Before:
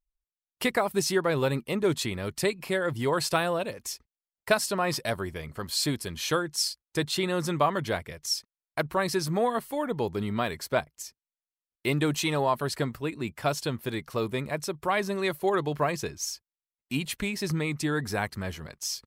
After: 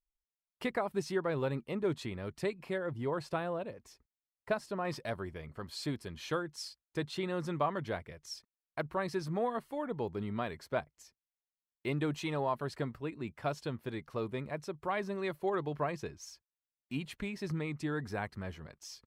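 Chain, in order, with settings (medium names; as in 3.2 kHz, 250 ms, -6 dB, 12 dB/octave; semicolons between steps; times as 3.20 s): low-pass 1.8 kHz 6 dB/octave, from 2.78 s 1 kHz, from 4.85 s 2.1 kHz; trim -7 dB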